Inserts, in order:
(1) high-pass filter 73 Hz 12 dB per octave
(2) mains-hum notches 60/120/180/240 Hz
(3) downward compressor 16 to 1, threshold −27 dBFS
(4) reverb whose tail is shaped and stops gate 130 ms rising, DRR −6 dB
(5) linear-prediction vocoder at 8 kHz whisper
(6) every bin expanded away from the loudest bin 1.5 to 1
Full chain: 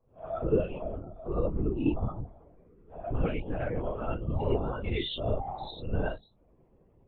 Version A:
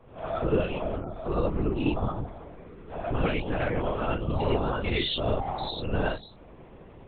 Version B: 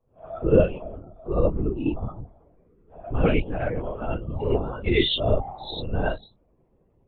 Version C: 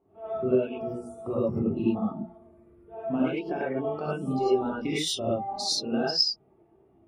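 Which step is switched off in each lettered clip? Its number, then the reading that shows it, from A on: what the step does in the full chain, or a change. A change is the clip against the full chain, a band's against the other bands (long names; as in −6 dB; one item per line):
6, 2 kHz band +5.5 dB
3, average gain reduction 2.5 dB
5, 4 kHz band +8.5 dB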